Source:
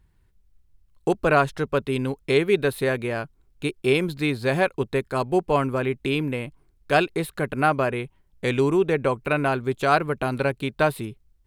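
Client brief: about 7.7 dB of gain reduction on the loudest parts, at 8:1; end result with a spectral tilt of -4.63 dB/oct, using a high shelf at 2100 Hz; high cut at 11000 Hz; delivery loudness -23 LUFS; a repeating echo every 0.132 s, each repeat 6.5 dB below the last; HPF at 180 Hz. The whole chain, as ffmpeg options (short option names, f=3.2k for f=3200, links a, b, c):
-af "highpass=180,lowpass=11k,highshelf=f=2.1k:g=-3.5,acompressor=threshold=-23dB:ratio=8,aecho=1:1:132|264|396|528|660|792:0.473|0.222|0.105|0.0491|0.0231|0.0109,volume=5.5dB"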